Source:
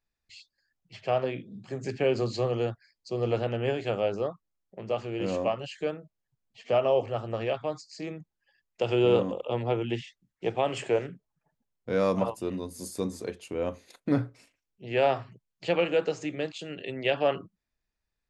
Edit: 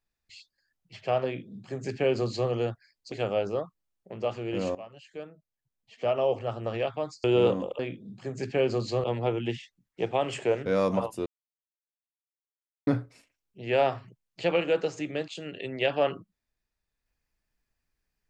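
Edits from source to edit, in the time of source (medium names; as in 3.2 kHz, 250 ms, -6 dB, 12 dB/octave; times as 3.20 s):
1.25–2.50 s: copy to 9.48 s
3.12–3.79 s: delete
5.42–7.29 s: fade in, from -17.5 dB
7.91–8.93 s: delete
11.10–11.90 s: delete
12.50–14.11 s: mute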